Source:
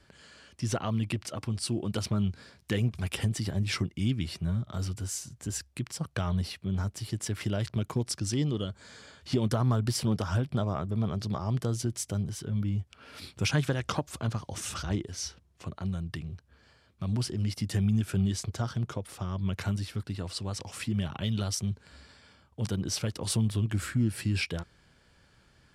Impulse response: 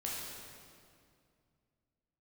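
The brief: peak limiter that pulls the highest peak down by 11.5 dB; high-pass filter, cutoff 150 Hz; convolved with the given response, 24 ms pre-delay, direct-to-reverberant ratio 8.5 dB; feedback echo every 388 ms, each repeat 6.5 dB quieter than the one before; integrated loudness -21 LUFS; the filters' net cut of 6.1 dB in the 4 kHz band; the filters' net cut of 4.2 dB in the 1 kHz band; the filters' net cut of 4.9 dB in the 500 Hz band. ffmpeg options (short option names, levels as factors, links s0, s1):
-filter_complex "[0:a]highpass=150,equalizer=f=500:t=o:g=-5.5,equalizer=f=1000:t=o:g=-3.5,equalizer=f=4000:t=o:g=-8.5,alimiter=level_in=1.33:limit=0.0631:level=0:latency=1,volume=0.75,aecho=1:1:388|776|1164|1552|1940|2328:0.473|0.222|0.105|0.0491|0.0231|0.0109,asplit=2[s0][s1];[1:a]atrim=start_sample=2205,adelay=24[s2];[s1][s2]afir=irnorm=-1:irlink=0,volume=0.299[s3];[s0][s3]amix=inputs=2:normalize=0,volume=5.96"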